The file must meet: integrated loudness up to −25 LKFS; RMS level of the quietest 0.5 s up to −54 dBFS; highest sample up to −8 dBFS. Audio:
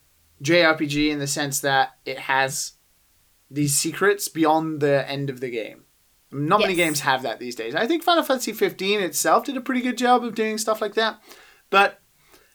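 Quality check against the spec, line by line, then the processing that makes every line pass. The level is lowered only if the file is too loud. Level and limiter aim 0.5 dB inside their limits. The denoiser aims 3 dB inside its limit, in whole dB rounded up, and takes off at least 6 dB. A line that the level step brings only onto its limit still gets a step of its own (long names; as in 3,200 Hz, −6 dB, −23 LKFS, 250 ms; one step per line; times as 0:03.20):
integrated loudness −22.0 LKFS: out of spec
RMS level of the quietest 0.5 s −61 dBFS: in spec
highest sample −5.0 dBFS: out of spec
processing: level −3.5 dB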